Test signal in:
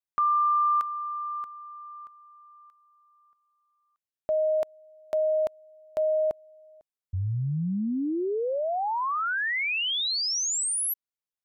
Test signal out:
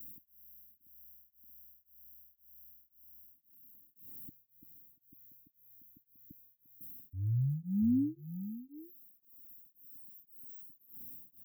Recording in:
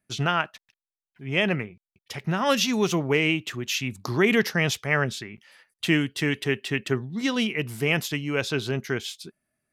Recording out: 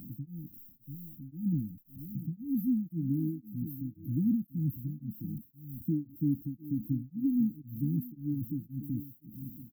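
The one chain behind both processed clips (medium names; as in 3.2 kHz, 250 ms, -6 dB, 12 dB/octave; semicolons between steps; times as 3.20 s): jump at every zero crossing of -34 dBFS; brick-wall FIR band-stop 320–13000 Hz; bass shelf 78 Hz -12 dB; delay 688 ms -12 dB; tremolo of two beating tones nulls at 1.9 Hz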